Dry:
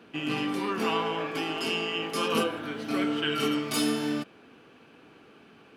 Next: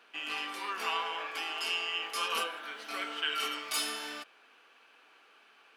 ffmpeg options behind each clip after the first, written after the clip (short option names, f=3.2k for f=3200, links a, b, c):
-af "highpass=930,volume=-1.5dB"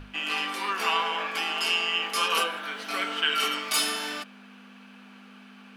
-af "aeval=exprs='val(0)+0.00501*(sin(2*PI*50*n/s)+sin(2*PI*2*50*n/s)/2+sin(2*PI*3*50*n/s)/3+sin(2*PI*4*50*n/s)/4+sin(2*PI*5*50*n/s)/5)':c=same,bandreject=f=50:t=h:w=6,bandreject=f=100:t=h:w=6,bandreject=f=150:t=h:w=6,volume=7.5dB"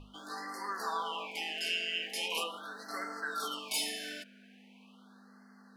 -af "afftfilt=real='re*(1-between(b*sr/1024,980*pow(3000/980,0.5+0.5*sin(2*PI*0.41*pts/sr))/1.41,980*pow(3000/980,0.5+0.5*sin(2*PI*0.41*pts/sr))*1.41))':imag='im*(1-between(b*sr/1024,980*pow(3000/980,0.5+0.5*sin(2*PI*0.41*pts/sr))/1.41,980*pow(3000/980,0.5+0.5*sin(2*PI*0.41*pts/sr))*1.41))':win_size=1024:overlap=0.75,volume=-8dB"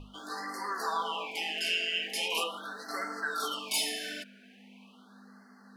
-af "flanger=delay=0.3:depth=2.7:regen=-54:speed=1.9:shape=triangular,volume=7.5dB"